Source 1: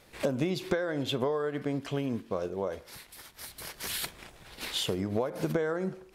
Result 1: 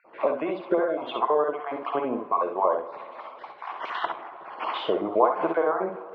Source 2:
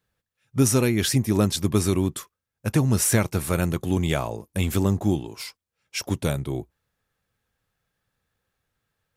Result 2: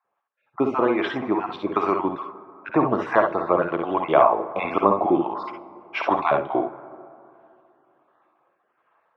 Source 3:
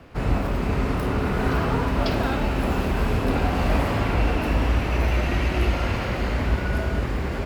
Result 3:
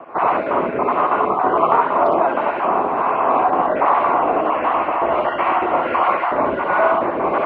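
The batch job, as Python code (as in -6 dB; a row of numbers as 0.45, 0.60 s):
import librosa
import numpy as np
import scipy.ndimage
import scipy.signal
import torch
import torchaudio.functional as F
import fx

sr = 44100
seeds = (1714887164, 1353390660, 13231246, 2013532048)

y = fx.spec_dropout(x, sr, seeds[0], share_pct=29)
y = fx.peak_eq(y, sr, hz=900.0, db=15.0, octaves=2.1)
y = fx.rider(y, sr, range_db=10, speed_s=2.0)
y = fx.harmonic_tremolo(y, sr, hz=1.4, depth_pct=50, crossover_hz=660.0)
y = fx.wow_flutter(y, sr, seeds[1], rate_hz=2.1, depth_cents=16.0)
y = fx.cabinet(y, sr, low_hz=280.0, low_slope=12, high_hz=2800.0, hz=(330.0, 670.0, 1100.0, 1700.0), db=(5, 5, 8, -4))
y = fx.room_early_taps(y, sr, ms=(55, 67), db=(-8.0, -7.0))
y = fx.rev_plate(y, sr, seeds[2], rt60_s=2.8, hf_ratio=0.35, predelay_ms=0, drr_db=15.0)
y = y * 10.0 ** (-1.0 / 20.0)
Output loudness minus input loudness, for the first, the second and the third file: +6.0, +1.0, +6.5 LU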